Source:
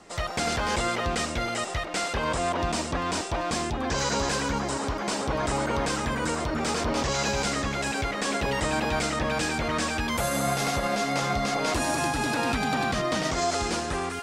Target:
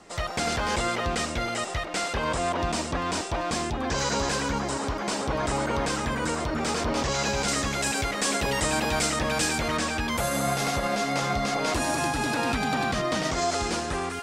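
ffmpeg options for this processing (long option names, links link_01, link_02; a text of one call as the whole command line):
ffmpeg -i in.wav -filter_complex "[0:a]asettb=1/sr,asplit=3[link_01][link_02][link_03];[link_01]atrim=end=7.484[link_04];[link_02]atrim=start=7.48:end=9.77,asetpts=PTS-STARTPTS,afade=type=in:duration=0.004:curve=qsin,afade=type=out:start_time=2.286:duration=0.004:curve=qsin,equalizer=frequency=13000:width_type=o:width=1.8:gain=10[link_05];[link_03]atrim=start=9.766[link_06];[link_04][link_05]acrossfade=duration=0.004:curve1=hsin:curve2=qsin[link_07];[link_07][link_06]acrossfade=duration=0.004:curve1=qsin:curve2=hsin" out.wav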